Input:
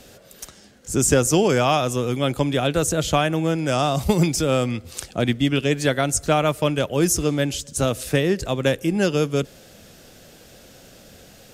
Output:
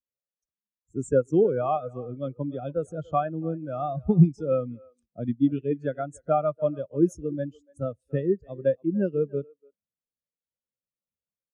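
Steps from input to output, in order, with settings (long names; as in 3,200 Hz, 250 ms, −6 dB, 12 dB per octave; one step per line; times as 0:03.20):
dynamic equaliser 1,300 Hz, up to +4 dB, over −35 dBFS, Q 1.2
far-end echo of a speakerphone 290 ms, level −10 dB
0:00.93–0:01.87: transient designer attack −2 dB, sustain −7 dB
every bin expanded away from the loudest bin 2.5 to 1
level −4 dB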